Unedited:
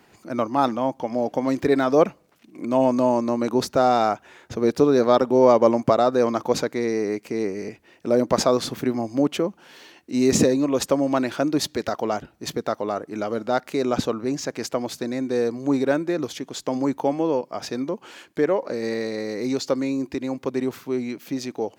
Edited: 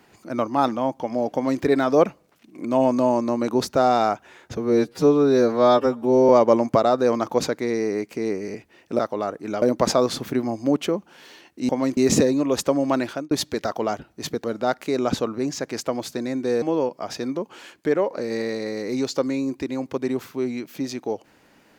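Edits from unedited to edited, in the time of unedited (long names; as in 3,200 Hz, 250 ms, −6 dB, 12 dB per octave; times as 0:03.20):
0:01.34–0:01.62: duplicate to 0:10.20
0:04.57–0:05.43: time-stretch 2×
0:11.27–0:11.54: fade out
0:12.67–0:13.30: move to 0:08.13
0:15.48–0:17.14: remove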